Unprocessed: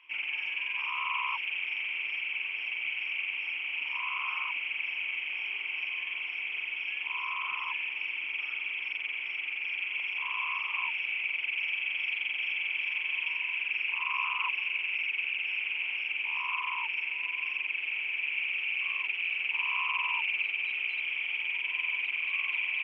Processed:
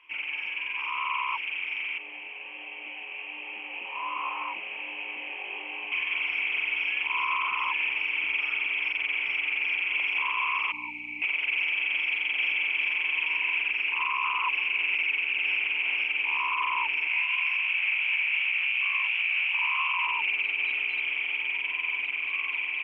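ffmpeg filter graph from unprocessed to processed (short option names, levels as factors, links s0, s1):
-filter_complex "[0:a]asettb=1/sr,asplit=3[s0][s1][s2];[s0]atrim=end=1.984[s3];[s1]atrim=start=1.98:end=5.92,asetpts=PTS-STARTPTS,afade=t=in:d=0.004:c=qsin,afade=t=out:st=3.936:d=0.004:c=qsin,highpass=190,equalizer=f=200:t=q:w=4:g=8,equalizer=f=330:t=q:w=4:g=9,equalizer=f=530:t=q:w=4:g=10,equalizer=f=800:t=q:w=4:g=8,equalizer=f=1400:t=q:w=4:g=-7,equalizer=f=2200:t=q:w=4:g=-8,lowpass=f=2900:w=0.5412,lowpass=f=2900:w=1.3066,flanger=delay=19:depth=2.7:speed=1.3[s4];[s2]atrim=start=5.916[s5];[s3][s4]acrossfade=d=0.004:c1=hsin:c2=qsin[s6];[s6][s5]acrossfade=d=0.004:c1=qsin:c2=hsin,asettb=1/sr,asplit=3[s7][s8][s9];[s7]atrim=end=10.724[s10];[s8]atrim=start=10.72:end=11.22,asetpts=PTS-STARTPTS,afade=t=in:d=0.004:c=qsin,afade=t=out:st=0.496:d=0.004:c=qsin,acrusher=bits=6:mix=0:aa=0.5,aeval=exprs='val(0)+0.00355*(sin(2*PI*60*n/s)+sin(2*PI*2*60*n/s)/2+sin(2*PI*3*60*n/s)/3+sin(2*PI*4*60*n/s)/4+sin(2*PI*5*60*n/s)/5)':c=same,asplit=3[s11][s12][s13];[s11]bandpass=f=300:t=q:w=8,volume=1[s14];[s12]bandpass=f=870:t=q:w=8,volume=0.501[s15];[s13]bandpass=f=2240:t=q:w=8,volume=0.355[s16];[s14][s15][s16]amix=inputs=3:normalize=0[s17];[s9]atrim=start=11.216[s18];[s10][s17]acrossfade=d=0.004:c1=hsin:c2=qsin[s19];[s19][s18]acrossfade=d=0.004:c1=qsin:c2=hsin,asettb=1/sr,asplit=3[s20][s21][s22];[s20]atrim=end=17.084[s23];[s21]atrim=start=17.08:end=20.07,asetpts=PTS-STARTPTS,afade=t=in:d=0.004:c=qsin,afade=t=out:st=2.986:d=0.004:c=qsin,highpass=860,acontrast=34,flanger=delay=15.5:depth=4.3:speed=2.8[s24];[s22]atrim=start=20.066[s25];[s23][s24]acrossfade=d=0.004:c1=hsin:c2=qsin[s26];[s26][s25]acrossfade=d=0.004:c1=qsin:c2=hsin,dynaudnorm=f=760:g=9:m=2,highshelf=f=2300:g=-10,alimiter=level_in=1.06:limit=0.0631:level=0:latency=1:release=51,volume=0.944,volume=2"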